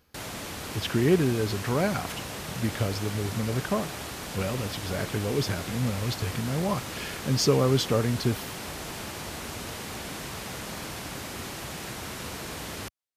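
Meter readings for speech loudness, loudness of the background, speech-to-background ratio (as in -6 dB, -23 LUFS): -28.0 LUFS, -36.0 LUFS, 8.0 dB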